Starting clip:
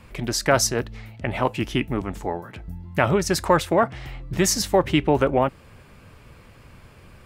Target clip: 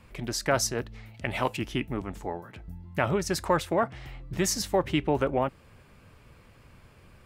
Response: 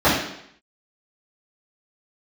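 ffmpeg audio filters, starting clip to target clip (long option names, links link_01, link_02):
-filter_complex "[0:a]asettb=1/sr,asplit=3[link_01][link_02][link_03];[link_01]atrim=end=1.144[link_04];[link_02]atrim=start=1.14:end=1.57,asetpts=PTS-STARTPTS,afade=type=in:duration=0.004:curve=qsin,afade=type=out:start_time=0.426:duration=0.004:curve=qsin,highshelf=frequency=2200:gain=10.5[link_05];[link_03]atrim=start=1.566[link_06];[link_04][link_05]acrossfade=duration=0.004:curve1=hsin:curve2=qsin[link_07];[link_07][link_06]acrossfade=duration=0.004:curve1=qsin:curve2=hsin,volume=-6.5dB"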